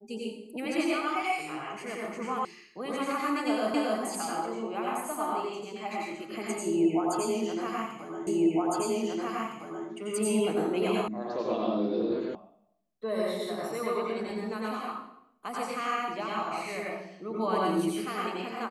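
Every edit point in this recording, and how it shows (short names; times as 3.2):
2.45 sound cut off
3.74 repeat of the last 0.27 s
8.27 repeat of the last 1.61 s
11.08 sound cut off
12.35 sound cut off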